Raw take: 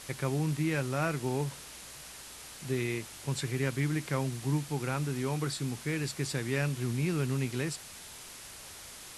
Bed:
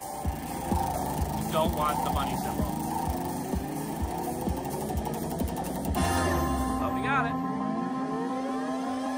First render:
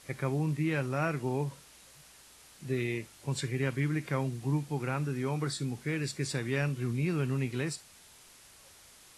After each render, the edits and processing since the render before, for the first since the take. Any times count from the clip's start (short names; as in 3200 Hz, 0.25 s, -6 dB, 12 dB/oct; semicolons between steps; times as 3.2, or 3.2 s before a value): noise print and reduce 9 dB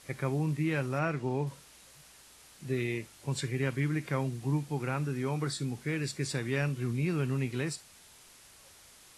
0.99–1.47 air absorption 55 m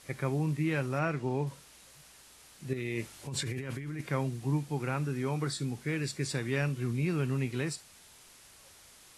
2.73–4.01 negative-ratio compressor -36 dBFS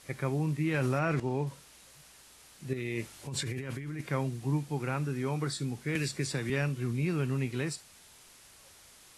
0.74–1.2 fast leveller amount 100%; 5.95–6.5 three-band squash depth 100%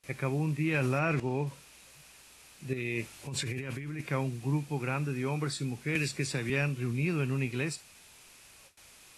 bell 2500 Hz +8 dB 0.24 oct; gate with hold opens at -45 dBFS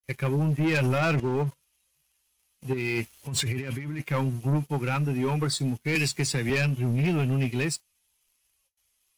per-bin expansion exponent 1.5; sample leveller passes 3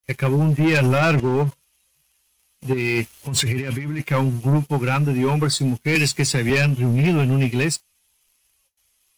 gain +7 dB